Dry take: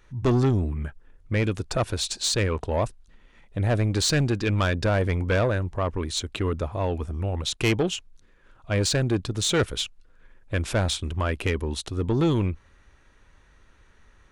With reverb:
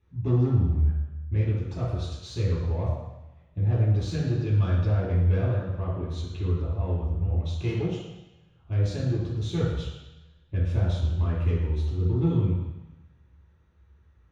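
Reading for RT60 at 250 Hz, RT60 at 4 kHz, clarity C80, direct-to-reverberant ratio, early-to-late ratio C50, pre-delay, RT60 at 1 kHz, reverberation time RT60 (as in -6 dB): 1.0 s, 1.2 s, 3.5 dB, -8.5 dB, 0.5 dB, 3 ms, 1.1 s, 1.0 s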